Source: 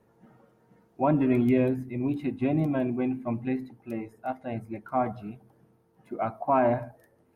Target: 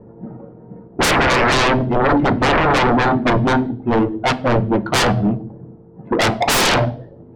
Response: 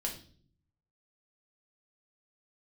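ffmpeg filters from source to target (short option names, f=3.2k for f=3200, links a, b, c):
-filter_complex "[0:a]adynamicsmooth=sensitivity=2.5:basefreq=560,aeval=exprs='0.211*sin(PI/2*8.91*val(0)/0.211)':c=same,asplit=2[a][b];[1:a]atrim=start_sample=2205,lowshelf=f=160:g=-9.5,highshelf=f=2.3k:g=-11[c];[b][c]afir=irnorm=-1:irlink=0,volume=-6.5dB[d];[a][d]amix=inputs=2:normalize=0"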